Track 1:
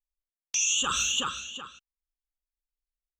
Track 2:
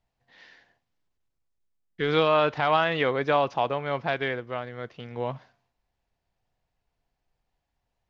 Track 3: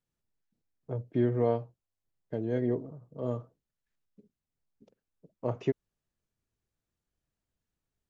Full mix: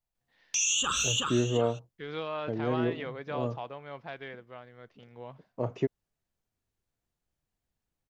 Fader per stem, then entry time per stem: -1.5 dB, -14.0 dB, 0.0 dB; 0.00 s, 0.00 s, 0.15 s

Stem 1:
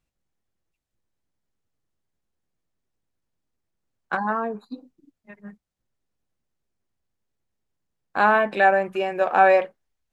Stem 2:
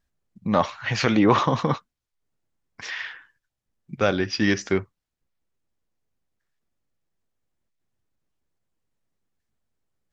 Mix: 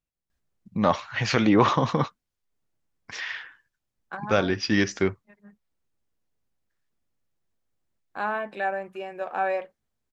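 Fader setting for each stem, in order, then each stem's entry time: -10.5 dB, -1.0 dB; 0.00 s, 0.30 s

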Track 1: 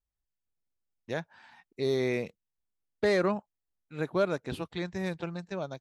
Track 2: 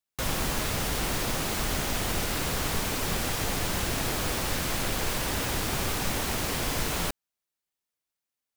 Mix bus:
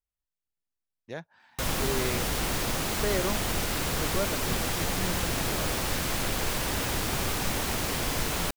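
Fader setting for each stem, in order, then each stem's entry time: -4.5 dB, 0.0 dB; 0.00 s, 1.40 s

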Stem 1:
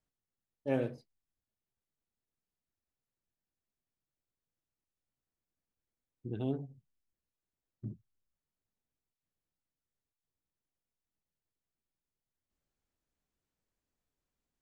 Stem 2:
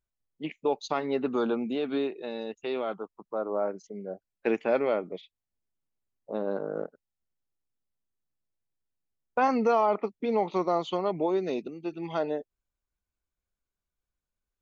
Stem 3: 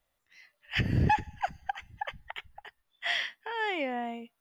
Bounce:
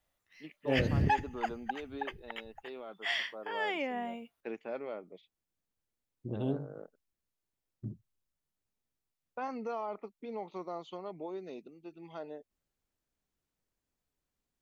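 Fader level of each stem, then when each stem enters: +1.0 dB, -14.0 dB, -3.0 dB; 0.00 s, 0.00 s, 0.00 s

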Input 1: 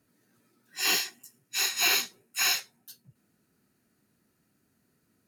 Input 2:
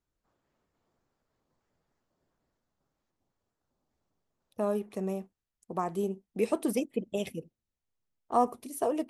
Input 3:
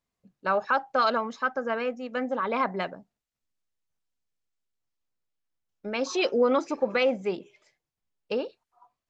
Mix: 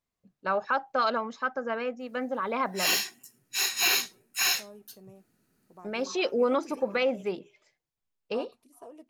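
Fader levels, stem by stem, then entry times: 0.0 dB, -18.5 dB, -2.5 dB; 2.00 s, 0.00 s, 0.00 s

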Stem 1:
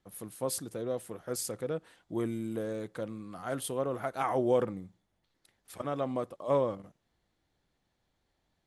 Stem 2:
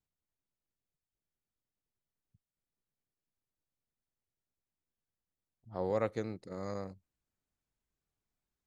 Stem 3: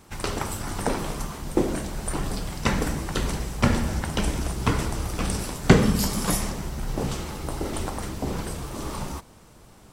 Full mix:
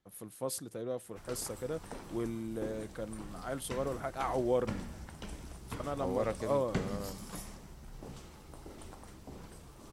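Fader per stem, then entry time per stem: -3.5 dB, -2.0 dB, -19.5 dB; 0.00 s, 0.25 s, 1.05 s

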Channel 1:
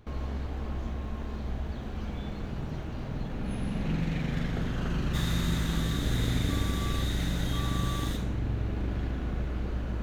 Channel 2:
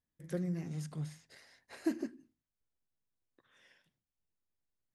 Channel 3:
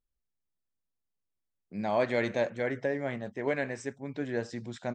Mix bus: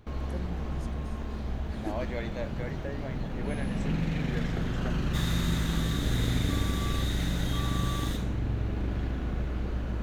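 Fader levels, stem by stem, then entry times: +0.5 dB, -4.5 dB, -8.5 dB; 0.00 s, 0.00 s, 0.00 s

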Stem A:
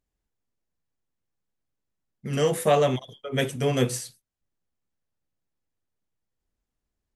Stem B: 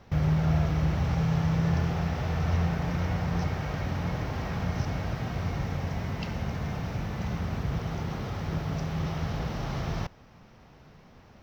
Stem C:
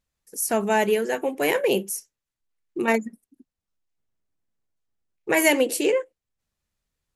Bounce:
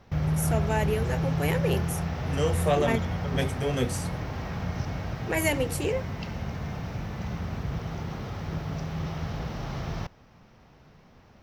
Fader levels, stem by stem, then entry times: -4.5 dB, -1.5 dB, -7.5 dB; 0.00 s, 0.00 s, 0.00 s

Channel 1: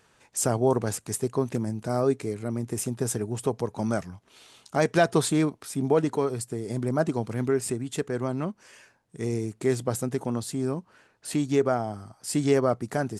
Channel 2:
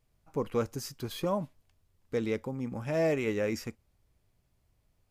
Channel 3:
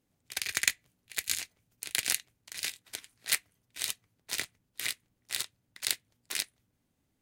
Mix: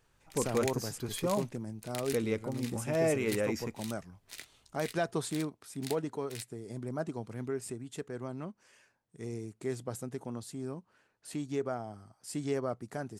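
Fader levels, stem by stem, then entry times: -11.0 dB, -1.0 dB, -13.0 dB; 0.00 s, 0.00 s, 0.00 s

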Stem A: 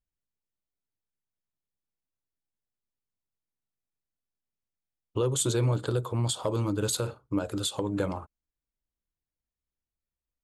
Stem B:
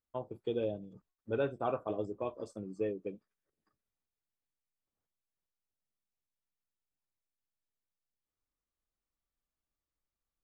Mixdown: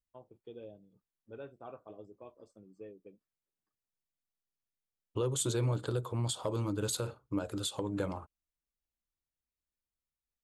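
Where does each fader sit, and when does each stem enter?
-5.5 dB, -14.0 dB; 0.00 s, 0.00 s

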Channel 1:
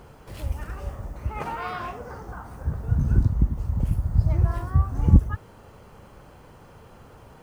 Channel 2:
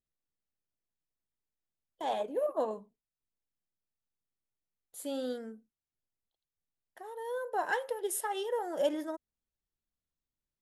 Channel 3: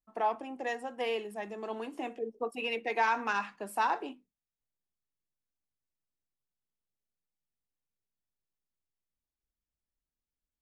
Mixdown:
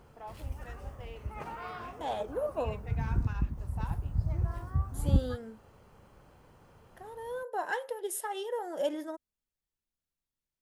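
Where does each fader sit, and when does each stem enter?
-10.0 dB, -1.5 dB, -16.0 dB; 0.00 s, 0.00 s, 0.00 s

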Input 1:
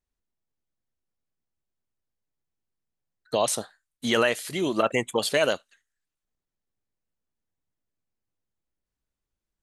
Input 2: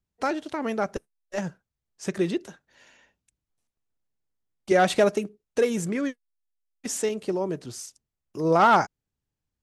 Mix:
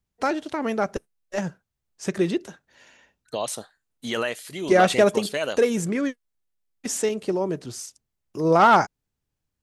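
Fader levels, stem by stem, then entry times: -4.5 dB, +2.5 dB; 0.00 s, 0.00 s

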